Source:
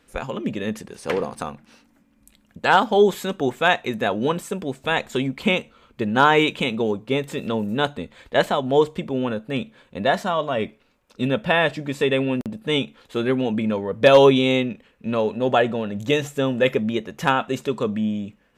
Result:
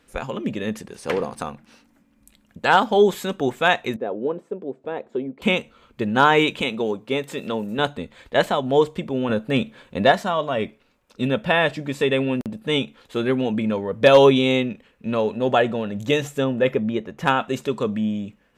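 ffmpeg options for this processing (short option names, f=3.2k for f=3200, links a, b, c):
-filter_complex "[0:a]asettb=1/sr,asplit=3[a][b][c];[a]atrim=end=3.964[d];[b]atrim=start=3.96:end=5.42,asetpts=PTS-STARTPTS,afade=t=in:d=0.004:c=qsin,afade=t=out:st=1.456:d=0.004:c=qsin,bandpass=f=410:t=q:w=1.7[e];[c]atrim=start=5.416[f];[d][e]acrossfade=d=0.004:c1=hsin:c2=qsin[g];[g][f]acrossfade=d=0.004:c1=qsin:c2=hsin,asettb=1/sr,asplit=3[h][i][j];[h]atrim=end=6.614[k];[i]atrim=start=6.61:end=7.79,asetpts=PTS-STARTPTS,afade=t=in:d=0.004:c=qsin,afade=t=out:st=1.176:d=0.004:c=qsin,highpass=f=230:p=1[l];[j]atrim=start=7.786[m];[k][l]acrossfade=d=0.004:c1=hsin:c2=qsin[n];[n][m]acrossfade=d=0.004:c1=qsin:c2=hsin,asettb=1/sr,asplit=3[o][p][q];[o]atrim=end=9.294[r];[p]atrim=start=9.29:end=10.12,asetpts=PTS-STARTPTS,afade=t=in:d=0.004:c=qsin,afade=t=out:st=0.826:d=0.004:c=qsin,acontrast=25[s];[q]atrim=start=10.116[t];[r][s]acrossfade=d=0.004:c1=hsin:c2=qsin[u];[u][t]acrossfade=d=0.004:c1=qsin:c2=hsin,asettb=1/sr,asplit=3[v][w][x];[v]atrim=end=16.444[y];[w]atrim=start=16.44:end=17.26,asetpts=PTS-STARTPTS,afade=t=in:d=0.004:c=qsin,afade=t=out:st=0.816:d=0.004:c=qsin,highshelf=f=2.9k:g=-10.5[z];[x]atrim=start=17.256[aa];[y][z]acrossfade=d=0.004:c1=hsin:c2=qsin[ab];[ab][aa]acrossfade=d=0.004:c1=qsin:c2=hsin"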